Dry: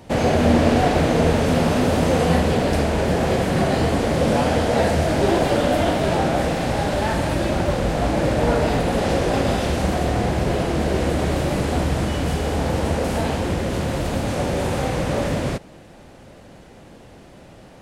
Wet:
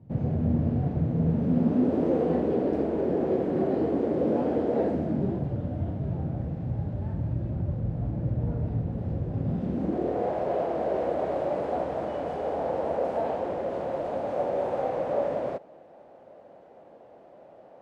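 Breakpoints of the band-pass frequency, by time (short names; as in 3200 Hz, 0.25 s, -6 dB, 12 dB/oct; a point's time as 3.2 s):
band-pass, Q 2.2
1.1 s 130 Hz
2.04 s 350 Hz
4.84 s 350 Hz
5.51 s 110 Hz
9.34 s 110 Hz
10.32 s 620 Hz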